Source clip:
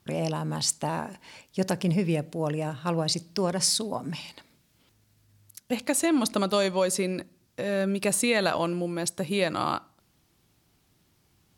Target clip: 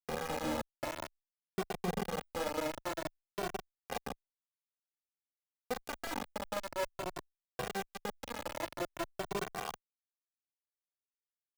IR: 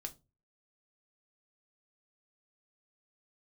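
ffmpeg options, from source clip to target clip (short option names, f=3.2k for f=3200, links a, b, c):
-filter_complex "[0:a]dynaudnorm=f=560:g=3:m=5dB,asplit=2[a][b];[1:a]atrim=start_sample=2205,lowshelf=f=120:g=10.5[c];[b][c]afir=irnorm=-1:irlink=0,volume=-4dB[d];[a][d]amix=inputs=2:normalize=0,asubboost=boost=8:cutoff=64,acompressor=threshold=-25dB:ratio=16,lowpass=1.1k,asplit=2[e][f];[f]adelay=39,volume=-5dB[g];[e][g]amix=inputs=2:normalize=0,aecho=1:1:161|322:0.2|0.0419,acrusher=bits=3:mix=0:aa=0.000001,equalizer=f=640:w=1.2:g=4.5,asplit=2[h][i];[i]adelay=2.1,afreqshift=0.51[j];[h][j]amix=inputs=2:normalize=1,volume=-8.5dB"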